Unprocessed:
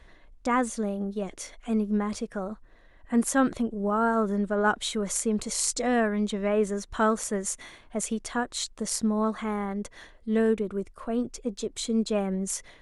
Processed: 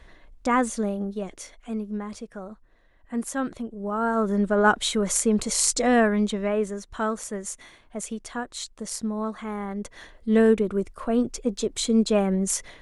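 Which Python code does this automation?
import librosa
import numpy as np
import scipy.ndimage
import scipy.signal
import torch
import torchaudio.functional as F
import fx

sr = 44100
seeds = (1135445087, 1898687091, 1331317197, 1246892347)

y = fx.gain(x, sr, db=fx.line((0.86, 3.0), (1.85, -5.0), (3.72, -5.0), (4.45, 5.0), (6.13, 5.0), (6.8, -3.0), (9.42, -3.0), (10.32, 5.5)))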